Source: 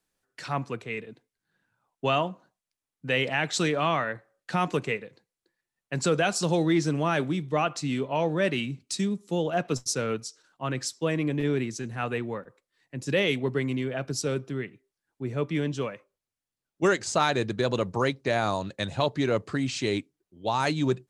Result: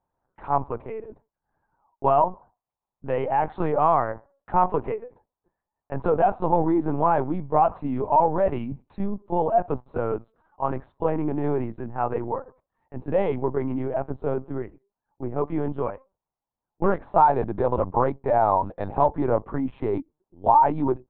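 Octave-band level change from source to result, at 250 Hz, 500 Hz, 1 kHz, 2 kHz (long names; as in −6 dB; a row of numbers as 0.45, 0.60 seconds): +0.5, +4.0, +9.5, −10.0 decibels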